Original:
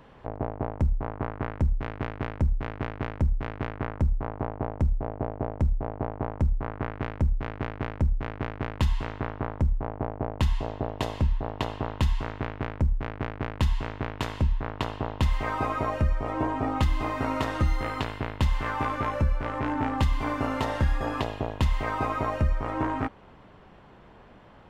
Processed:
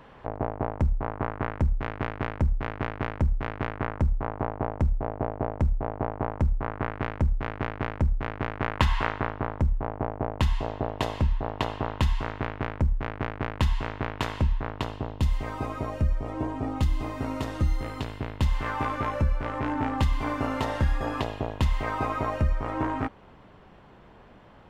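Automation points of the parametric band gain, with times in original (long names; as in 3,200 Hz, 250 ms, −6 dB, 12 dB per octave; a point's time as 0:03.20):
parametric band 1,400 Hz 2.7 octaves
0:08.47 +4 dB
0:08.98 +14 dB
0:09.34 +3 dB
0:14.53 +3 dB
0:15.16 −8 dB
0:17.99 −8 dB
0:18.68 −0.5 dB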